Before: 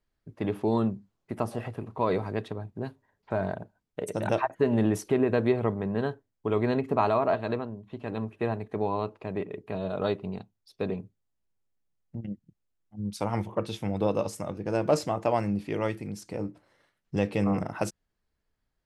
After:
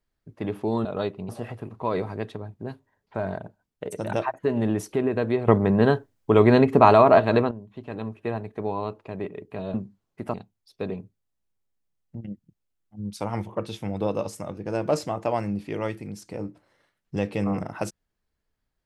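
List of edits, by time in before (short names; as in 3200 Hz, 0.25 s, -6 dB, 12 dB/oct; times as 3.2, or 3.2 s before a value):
0.85–1.45 swap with 9.9–10.34
5.64–7.67 gain +10 dB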